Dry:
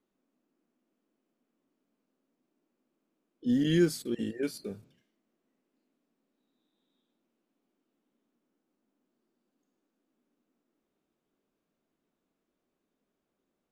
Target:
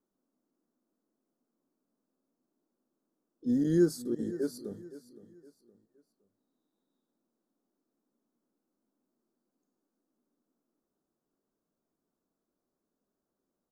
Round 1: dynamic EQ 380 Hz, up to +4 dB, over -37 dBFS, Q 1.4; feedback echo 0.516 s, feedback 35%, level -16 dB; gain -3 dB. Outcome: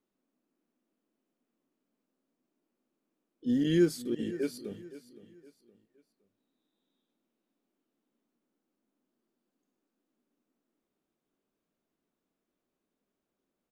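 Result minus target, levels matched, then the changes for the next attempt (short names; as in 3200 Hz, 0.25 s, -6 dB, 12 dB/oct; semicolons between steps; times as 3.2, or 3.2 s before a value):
2000 Hz band +6.0 dB
add after dynamic EQ: Butterworth band-stop 2600 Hz, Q 0.88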